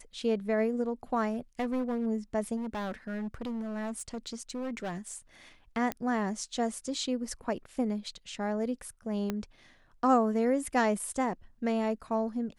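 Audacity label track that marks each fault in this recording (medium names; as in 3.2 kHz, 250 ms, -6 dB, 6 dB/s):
1.330000	2.070000	clipped -27 dBFS
2.560000	5.160000	clipped -32 dBFS
5.920000	5.920000	pop -17 dBFS
9.300000	9.300000	pop -18 dBFS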